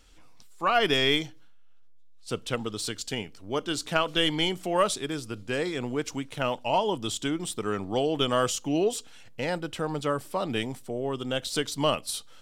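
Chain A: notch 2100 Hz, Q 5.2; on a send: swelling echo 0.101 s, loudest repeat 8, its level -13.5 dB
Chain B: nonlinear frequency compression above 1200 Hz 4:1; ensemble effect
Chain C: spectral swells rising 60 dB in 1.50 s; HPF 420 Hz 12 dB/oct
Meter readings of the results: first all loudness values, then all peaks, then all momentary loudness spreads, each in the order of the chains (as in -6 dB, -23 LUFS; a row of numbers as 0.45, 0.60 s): -27.0, -30.5, -25.5 LUFS; -9.0, -11.5, -6.5 dBFS; 5, 10, 10 LU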